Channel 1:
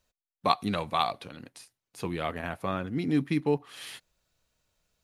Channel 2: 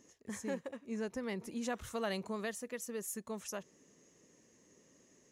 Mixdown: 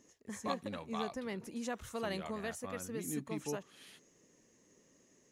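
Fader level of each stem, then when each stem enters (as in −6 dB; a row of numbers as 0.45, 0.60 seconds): −14.5, −1.5 decibels; 0.00, 0.00 seconds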